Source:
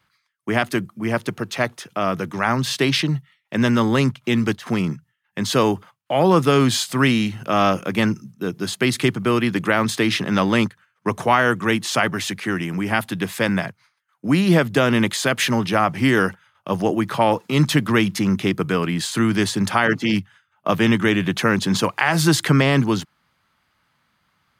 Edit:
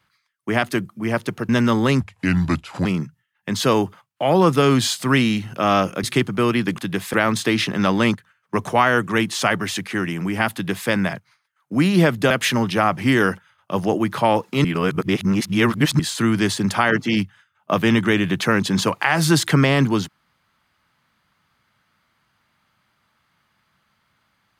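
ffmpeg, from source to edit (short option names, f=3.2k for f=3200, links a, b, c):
-filter_complex "[0:a]asplit=10[a][b][c][d][e][f][g][h][i][j];[a]atrim=end=1.492[k];[b]atrim=start=3.578:end=4.104[l];[c]atrim=start=4.1:end=4.75,asetpts=PTS-STARTPTS,asetrate=33957,aresample=44100,atrim=end_sample=37227,asetpts=PTS-STARTPTS[m];[d]atrim=start=4.746:end=7.932[n];[e]atrim=start=8.908:end=9.662[o];[f]atrim=start=13.058:end=13.412[p];[g]atrim=start=9.658:end=14.832[q];[h]atrim=start=15.268:end=17.612[r];[i]atrim=start=17.608:end=18.962,asetpts=PTS-STARTPTS,areverse[s];[j]atrim=start=18.958[t];[k][l]acrossfade=d=0.004:c1=hsin:c2=hsin[u];[u][m]acrossfade=d=0.004:c1=hsin:c2=hsin[v];[v][n]acrossfade=d=0.004:c1=hsin:c2=hsin[w];[w][o]acrossfade=d=0.004:c1=hsin:c2=hsin[x];[x][p]acrossfade=d=0.004:c1=hsin:c2=hsin[y];[y][q]acrossfade=d=0.004:c1=hsin:c2=hsin[z];[z][r]acrossfade=d=0.004:c1=hsin:c2=hsin[aa];[aa][s]acrossfade=d=0.004:c1=hsin:c2=hsin[ab];[ab][t]acrossfade=d=0.004:c1=hsin:c2=hsin"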